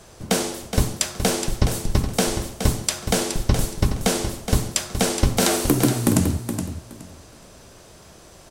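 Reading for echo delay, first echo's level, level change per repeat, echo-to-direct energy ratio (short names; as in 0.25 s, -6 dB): 0.42 s, -8.5 dB, -14.0 dB, -8.5 dB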